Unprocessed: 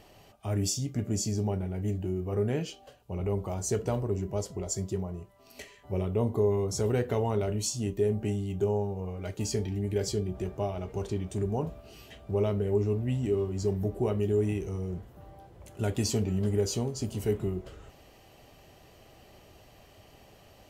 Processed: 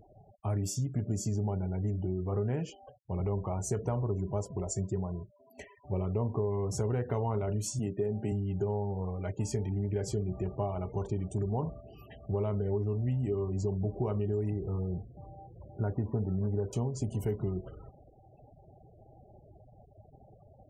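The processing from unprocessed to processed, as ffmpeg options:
ffmpeg -i in.wav -filter_complex "[0:a]asettb=1/sr,asplit=3[link_01][link_02][link_03];[link_01]atrim=end=7.794[link_04];[link_02]atrim=start=7.79:end=8.32,asetpts=PTS-STARTPTS,afade=type=in:duration=0.004:curve=qsin,afade=type=out:start_time=0.526:duration=0.004:curve=qsin,highpass=120[link_05];[link_03]atrim=start=8.316[link_06];[link_04][link_05]acrossfade=duration=0.004:curve1=hsin:curve2=qsin[link_07];[link_07][link_06]acrossfade=duration=0.004:curve1=qsin:curve2=hsin,asettb=1/sr,asplit=3[link_08][link_09][link_10];[link_08]atrim=end=14.504[link_11];[link_09]atrim=start=14.5:end=16.73,asetpts=PTS-STARTPTS,afade=type=in:duration=0.004:curve=qsin,afade=type=out:start_time=2.226:duration=0.004:curve=qsin,lowpass=frequency=1600:width=0.5412,lowpass=frequency=1600:width=1.3066[link_12];[link_10]atrim=start=16.726[link_13];[link_11][link_12]acrossfade=duration=0.004:curve1=hsin:curve2=qsin[link_14];[link_14][link_13]acrossfade=duration=0.004:curve1=qsin:curve2=hsin,afftfilt=real='re*gte(hypot(re,im),0.00501)':imag='im*gte(hypot(re,im),0.00501)':win_size=1024:overlap=0.75,equalizer=frequency=125:width_type=o:width=1:gain=6,equalizer=frequency=1000:width_type=o:width=1:gain=6,equalizer=frequency=4000:width_type=o:width=1:gain=-10,acompressor=threshold=-26dB:ratio=6,volume=-1.5dB" out.wav

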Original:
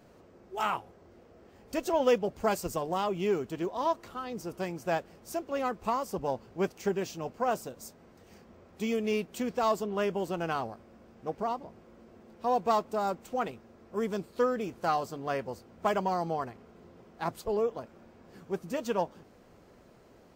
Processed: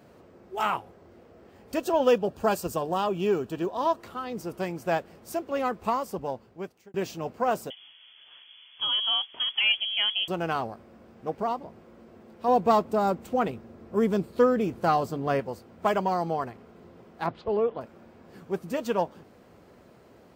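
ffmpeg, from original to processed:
ffmpeg -i in.wav -filter_complex "[0:a]asettb=1/sr,asplit=3[link_01][link_02][link_03];[link_01]atrim=end=1.764[link_04];[link_02]atrim=start=1.76:end=4,asetpts=PTS-STARTPTS,afade=type=in:duration=0.004:curve=qsin,afade=type=out:start_time=2.236:duration=0.004:curve=qsin,asuperstop=centerf=2100:order=4:qfactor=5.9[link_05];[link_03]atrim=start=3.996[link_06];[link_04][link_05]acrossfade=duration=0.004:curve1=hsin:curve2=qsin[link_07];[link_07][link_06]acrossfade=duration=0.004:curve1=qsin:curve2=hsin,asettb=1/sr,asplit=3[link_08][link_09][link_10];[link_08]atrim=end=7.704[link_11];[link_09]atrim=start=7.7:end=10.28,asetpts=PTS-STARTPTS,afade=type=in:duration=0.004:curve=qsin,afade=type=out:start_time=2.576:duration=0.004:curve=qsin,lowpass=frequency=3000:width_type=q:width=0.5098,lowpass=frequency=3000:width_type=q:width=0.6013,lowpass=frequency=3000:width_type=q:width=0.9,lowpass=frequency=3000:width_type=q:width=2.563,afreqshift=-3500[link_12];[link_10]atrim=start=10.276[link_13];[link_11][link_12]acrossfade=duration=0.004:curve1=hsin:curve2=qsin[link_14];[link_14][link_13]acrossfade=duration=0.004:curve1=qsin:curve2=hsin,asettb=1/sr,asplit=3[link_15][link_16][link_17];[link_15]atrim=end=12.484[link_18];[link_16]atrim=start=12.48:end=15.4,asetpts=PTS-STARTPTS,afade=type=in:duration=0.004:curve=qsin,afade=type=out:start_time=2.916:duration=0.004:curve=qsin,lowshelf=frequency=400:gain=7.5[link_19];[link_17]atrim=start=15.396[link_20];[link_18][link_19]acrossfade=duration=0.004:curve1=hsin:curve2=qsin[link_21];[link_21][link_20]acrossfade=duration=0.004:curve1=qsin:curve2=hsin,asettb=1/sr,asplit=3[link_22][link_23][link_24];[link_22]atrim=end=17.264[link_25];[link_23]atrim=start=17.26:end=17.81,asetpts=PTS-STARTPTS,afade=type=in:duration=0.004:curve=qsin,afade=type=out:start_time=0.546:duration=0.004:curve=qsin,lowpass=frequency=3900:width=0.5412,lowpass=frequency=3900:width=1.3066[link_26];[link_24]atrim=start=17.806[link_27];[link_25][link_26]acrossfade=duration=0.004:curve1=hsin:curve2=qsin[link_28];[link_28][link_27]acrossfade=duration=0.004:curve1=qsin:curve2=hsin,asplit=2[link_29][link_30];[link_29]atrim=end=6.94,asetpts=PTS-STARTPTS,afade=type=out:start_time=5.89:duration=1.05[link_31];[link_30]atrim=start=6.94,asetpts=PTS-STARTPTS,afade=type=in:duration=0.004:curve=hsin[link_32];[link_31][link_32]concat=n=2:v=0:a=1,highpass=58,equalizer=frequency=6200:width_type=o:width=0.71:gain=-4,volume=3.5dB" out.wav

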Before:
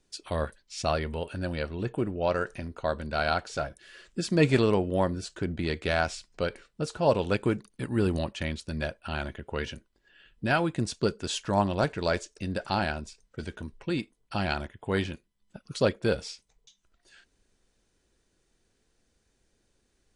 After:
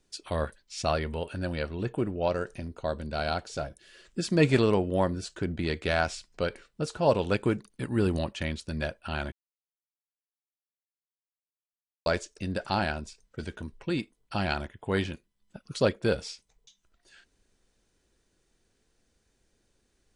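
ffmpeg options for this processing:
ffmpeg -i in.wav -filter_complex "[0:a]asettb=1/sr,asplit=3[link_01][link_02][link_03];[link_01]atrim=end=2.284[link_04];[link_02]atrim=start=2.28:end=4.05,asetpts=PTS-STARTPTS,afade=type=in:duration=0.004:curve=qsin,afade=type=out:start_time=1.766:duration=0.004:curve=qsin,equalizer=frequency=1500:width_type=o:width=1.9:gain=-6[link_05];[link_03]atrim=start=4.046[link_06];[link_04][link_05]acrossfade=duration=0.004:curve1=hsin:curve2=qsin[link_07];[link_07][link_06]acrossfade=duration=0.004:curve1=qsin:curve2=hsin,asplit=3[link_08][link_09][link_10];[link_08]atrim=end=9.32,asetpts=PTS-STARTPTS,afade=type=out:start_time=9.316:duration=0.004:curve=hsin[link_11];[link_09]atrim=start=9.32:end=12.06,asetpts=PTS-STARTPTS,volume=0[link_12];[link_10]atrim=start=12.06,asetpts=PTS-STARTPTS,afade=type=in:duration=0.004:curve=hsin[link_13];[link_11][link_12][link_13]concat=n=3:v=0:a=1" out.wav

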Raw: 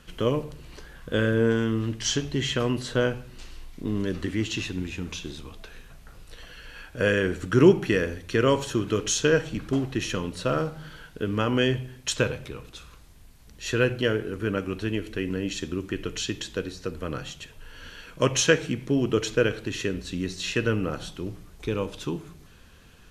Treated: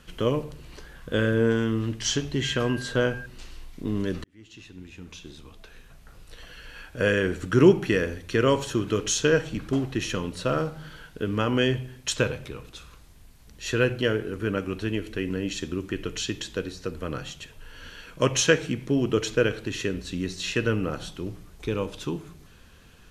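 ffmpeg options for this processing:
ffmpeg -i in.wav -filter_complex "[0:a]asettb=1/sr,asplit=3[link_01][link_02][link_03];[link_01]atrim=end=2.444[link_04];[link_02]atrim=start=2.44:end=3.26,asetpts=PTS-STARTPTS,afade=type=in:duration=0.004:curve=qsin,afade=type=out:start_time=0.816:duration=0.004:curve=qsin,aeval=exprs='val(0)+0.0141*sin(2*PI*1600*n/s)':channel_layout=same[link_05];[link_03]atrim=start=3.256[link_06];[link_04][link_05]acrossfade=duration=0.004:curve1=hsin:curve2=qsin[link_07];[link_07][link_06]acrossfade=duration=0.004:curve1=qsin:curve2=hsin,asplit=2[link_08][link_09];[link_08]atrim=end=4.24,asetpts=PTS-STARTPTS,afade=type=out:start_time=4.236:duration=0.004:curve=hsin[link_10];[link_09]atrim=start=4.24,asetpts=PTS-STARTPTS,afade=type=in:duration=2.3[link_11];[link_10][link_11]concat=n=2:v=0:a=1" out.wav

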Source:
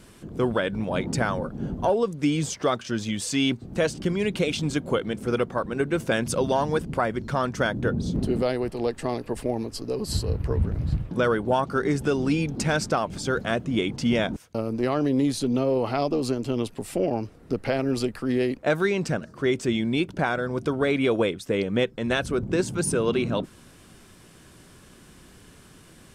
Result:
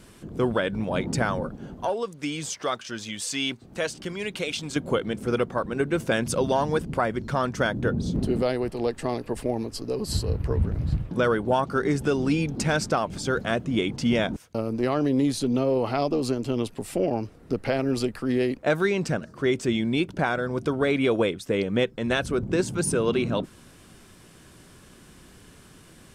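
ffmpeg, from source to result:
ffmpeg -i in.wav -filter_complex "[0:a]asettb=1/sr,asplit=3[link_01][link_02][link_03];[link_01]atrim=end=1.554[link_04];[link_02]atrim=start=1.55:end=4.76,asetpts=PTS-STARTPTS,afade=type=in:duration=0.004:curve=qsin,afade=type=out:start_time=3.206:duration=0.004:curve=qsin,lowshelf=frequency=500:gain=-11[link_05];[link_03]atrim=start=4.756[link_06];[link_04][link_05]acrossfade=duration=0.004:curve1=hsin:curve2=qsin[link_07];[link_07][link_06]acrossfade=duration=0.004:curve1=qsin:curve2=hsin" out.wav

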